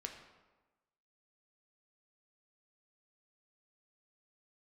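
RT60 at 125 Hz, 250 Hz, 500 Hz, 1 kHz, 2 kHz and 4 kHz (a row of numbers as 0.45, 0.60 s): 1.1, 1.2, 1.2, 1.2, 1.0, 0.75 s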